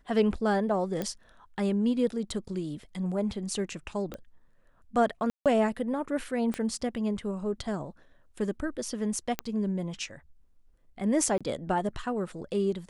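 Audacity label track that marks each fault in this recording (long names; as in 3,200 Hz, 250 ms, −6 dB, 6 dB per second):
1.020000	1.020000	click −18 dBFS
4.140000	4.140000	click −24 dBFS
5.300000	5.460000	drop-out 157 ms
6.540000	6.540000	click −19 dBFS
9.390000	9.390000	click −13 dBFS
11.380000	11.410000	drop-out 26 ms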